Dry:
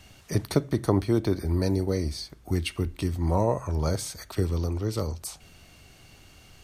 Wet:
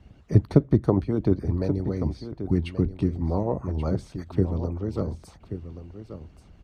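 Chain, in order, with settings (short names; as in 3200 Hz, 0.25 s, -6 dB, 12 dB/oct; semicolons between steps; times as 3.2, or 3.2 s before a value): HPF 66 Hz; high shelf 8100 Hz -11 dB; harmonic-percussive split harmonic -15 dB; tilt -4 dB/oct; echo 1.131 s -11.5 dB; gain -1 dB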